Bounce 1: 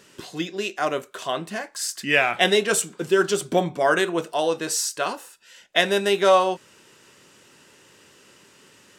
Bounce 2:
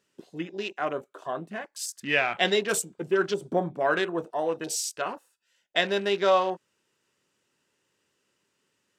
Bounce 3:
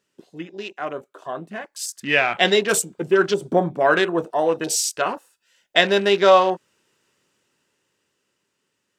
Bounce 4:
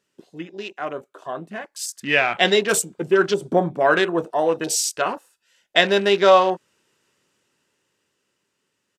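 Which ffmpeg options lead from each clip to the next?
ffmpeg -i in.wav -af "afwtdn=0.02,volume=-5dB" out.wav
ffmpeg -i in.wav -af "dynaudnorm=framelen=210:gausssize=17:maxgain=11.5dB" out.wav
ffmpeg -i in.wav -af "aresample=32000,aresample=44100" out.wav

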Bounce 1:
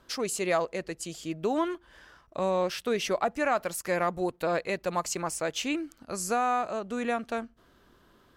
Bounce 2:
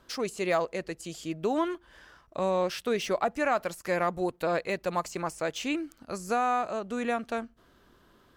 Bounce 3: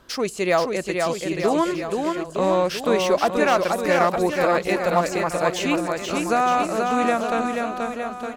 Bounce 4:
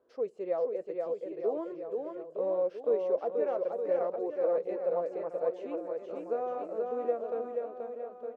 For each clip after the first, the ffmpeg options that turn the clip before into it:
ffmpeg -i in.wav -af "deesser=0.8" out.wav
ffmpeg -i in.wav -af "aecho=1:1:480|912|1301|1651|1966:0.631|0.398|0.251|0.158|0.1,volume=7dB" out.wav
ffmpeg -i in.wav -af "flanger=delay=2.7:depth=5:regen=-64:speed=0.7:shape=sinusoidal,bandpass=frequency=490:width_type=q:width=5.1:csg=0" out.wav

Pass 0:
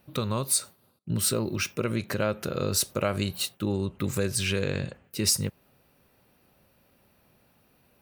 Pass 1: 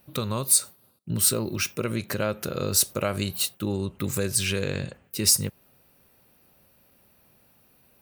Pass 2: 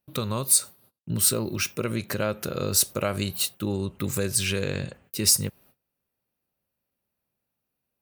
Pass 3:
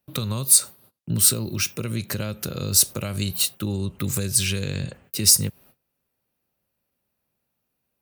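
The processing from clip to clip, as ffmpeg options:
ffmpeg -i in.wav -af "highshelf=frequency=6800:gain=8.5" out.wav
ffmpeg -i in.wav -af "agate=range=-22dB:threshold=-55dB:ratio=16:detection=peak" out.wav
ffmpeg -i in.wav -filter_complex "[0:a]acrossover=split=210|3000[link_01][link_02][link_03];[link_02]acompressor=threshold=-37dB:ratio=6[link_04];[link_01][link_04][link_03]amix=inputs=3:normalize=0,volume=4.5dB" out.wav

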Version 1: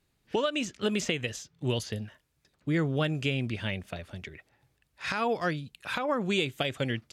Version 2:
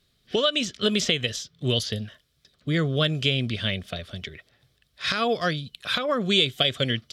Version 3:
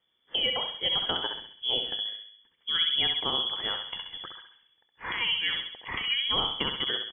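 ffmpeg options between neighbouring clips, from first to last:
ffmpeg -i in.wav -af "superequalizer=6b=0.631:9b=0.316:13b=2.82:14b=2,volume=4.5dB" out.wav
ffmpeg -i in.wav -filter_complex "[0:a]asplit=2[link_01][link_02];[link_02]adelay=66,lowpass=frequency=2700:poles=1,volume=-4dB,asplit=2[link_03][link_04];[link_04]adelay=66,lowpass=frequency=2700:poles=1,volume=0.55,asplit=2[link_05][link_06];[link_06]adelay=66,lowpass=frequency=2700:poles=1,volume=0.55,asplit=2[link_07][link_08];[link_08]adelay=66,lowpass=frequency=2700:poles=1,volume=0.55,asplit=2[link_09][link_10];[link_10]adelay=66,lowpass=frequency=2700:poles=1,volume=0.55,asplit=2[link_11][link_12];[link_12]adelay=66,lowpass=frequency=2700:poles=1,volume=0.55,asplit=2[link_13][link_14];[link_14]adelay=66,lowpass=frequency=2700:poles=1,volume=0.55[link_15];[link_03][link_05][link_07][link_09][link_11][link_13][link_15]amix=inputs=7:normalize=0[link_16];[link_01][link_16]amix=inputs=2:normalize=0,lowpass=frequency=3000:width_type=q:width=0.5098,lowpass=frequency=3000:width_type=q:width=0.6013,lowpass=frequency=3000:width_type=q:width=0.9,lowpass=frequency=3000:width_type=q:width=2.563,afreqshift=-3500,volume=-5.5dB" out.wav

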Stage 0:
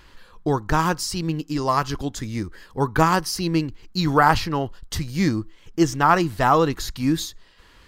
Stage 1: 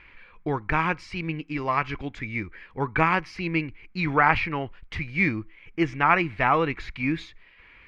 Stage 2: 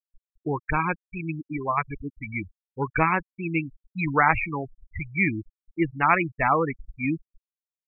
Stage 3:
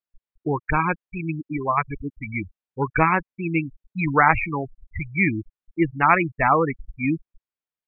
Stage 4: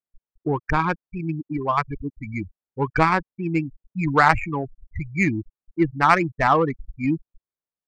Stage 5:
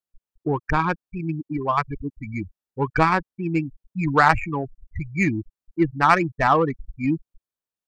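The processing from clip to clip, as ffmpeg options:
ffmpeg -i in.wav -af "lowpass=frequency=2300:width_type=q:width=10,volume=-6dB" out.wav
ffmpeg -i in.wav -af "afftfilt=real='re*gte(hypot(re,im),0.112)':imag='im*gte(hypot(re,im),0.112)':win_size=1024:overlap=0.75" out.wav
ffmpeg -i in.wav -af "lowpass=2800,volume=3.5dB" out.wav
ffmpeg -i in.wav -af "adynamicsmooth=sensitivity=0.5:basefreq=1500,volume=1dB" out.wav
ffmpeg -i in.wav -af "bandreject=frequency=2100:width=16" out.wav

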